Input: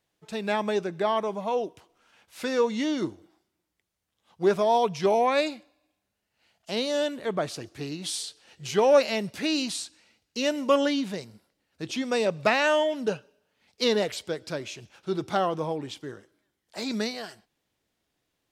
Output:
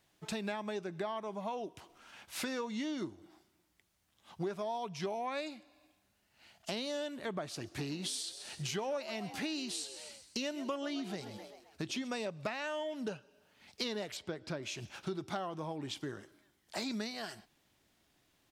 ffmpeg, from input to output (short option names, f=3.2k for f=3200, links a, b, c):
-filter_complex "[0:a]asplit=3[a][b][c];[a]afade=t=out:st=7.77:d=0.02[d];[b]asplit=5[e][f][g][h][i];[f]adelay=131,afreqshift=74,volume=-16dB[j];[g]adelay=262,afreqshift=148,volume=-22.6dB[k];[h]adelay=393,afreqshift=222,volume=-29.1dB[l];[i]adelay=524,afreqshift=296,volume=-35.7dB[m];[e][j][k][l][m]amix=inputs=5:normalize=0,afade=t=in:st=7.77:d=0.02,afade=t=out:st=12.07:d=0.02[n];[c]afade=t=in:st=12.07:d=0.02[o];[d][n][o]amix=inputs=3:normalize=0,asettb=1/sr,asplit=3[p][q][r];[p]atrim=end=14.174[s];[q]atrim=start=14.17:end=14.63,asetpts=PTS-STARTPTS,afade=t=in:d=0.004:c=qsin,afade=t=out:st=0.456:d=0.004:c=qsin,lowpass=f=2.1k:p=1[t];[r]atrim=start=14.626[u];[s][t]acrossfade=d=0.004:c1=hsin:c2=qsin[v];[v][u]acrossfade=d=0.004:c1=qsin:c2=hsin,equalizer=f=480:w=5:g=-7,acompressor=threshold=-43dB:ratio=6,volume=6dB"